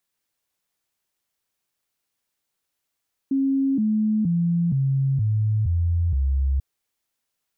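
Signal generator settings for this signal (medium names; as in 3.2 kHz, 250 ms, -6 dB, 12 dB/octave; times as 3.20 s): stepped sine 271 Hz down, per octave 3, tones 7, 0.47 s, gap 0.00 s -18 dBFS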